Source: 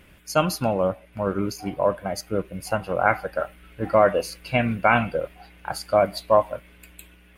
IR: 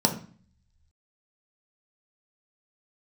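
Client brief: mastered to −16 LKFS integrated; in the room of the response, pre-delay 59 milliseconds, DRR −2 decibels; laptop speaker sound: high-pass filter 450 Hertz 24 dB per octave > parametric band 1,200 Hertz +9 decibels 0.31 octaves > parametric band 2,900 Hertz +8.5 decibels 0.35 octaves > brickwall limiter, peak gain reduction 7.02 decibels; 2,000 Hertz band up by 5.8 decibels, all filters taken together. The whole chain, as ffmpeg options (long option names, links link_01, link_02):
-filter_complex "[0:a]equalizer=frequency=2000:width_type=o:gain=5,asplit=2[link_01][link_02];[1:a]atrim=start_sample=2205,adelay=59[link_03];[link_02][link_03]afir=irnorm=-1:irlink=0,volume=-10.5dB[link_04];[link_01][link_04]amix=inputs=2:normalize=0,highpass=frequency=450:width=0.5412,highpass=frequency=450:width=1.3066,equalizer=frequency=1200:width_type=o:width=0.31:gain=9,equalizer=frequency=2900:width_type=o:width=0.35:gain=8.5,volume=3dB,alimiter=limit=-2.5dB:level=0:latency=1"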